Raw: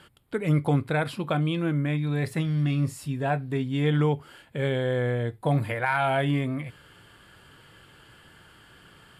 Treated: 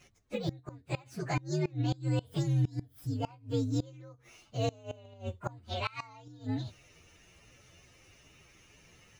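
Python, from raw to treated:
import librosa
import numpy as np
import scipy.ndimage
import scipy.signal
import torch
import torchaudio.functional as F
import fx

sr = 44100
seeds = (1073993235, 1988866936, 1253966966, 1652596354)

y = fx.partial_stretch(x, sr, pct=127)
y = fx.gate_flip(y, sr, shuts_db=-18.0, range_db=-25)
y = y * librosa.db_to_amplitude(-2.0)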